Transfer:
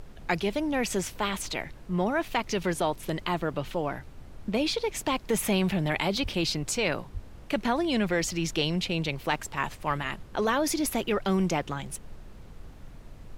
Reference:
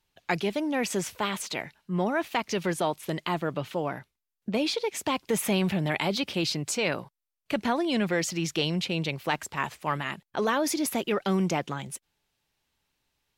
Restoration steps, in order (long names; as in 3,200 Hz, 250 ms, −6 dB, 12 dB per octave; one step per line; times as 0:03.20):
0:06.22–0:06.34: high-pass filter 140 Hz 24 dB per octave
0:07.13–0:07.25: high-pass filter 140 Hz 24 dB per octave
noise reduction from a noise print 30 dB